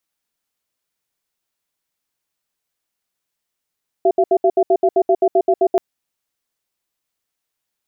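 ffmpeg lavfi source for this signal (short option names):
-f lavfi -i "aevalsrc='0.224*(sin(2*PI*380*t)+sin(2*PI*681*t))*clip(min(mod(t,0.13),0.06-mod(t,0.13))/0.005,0,1)':d=1.73:s=44100"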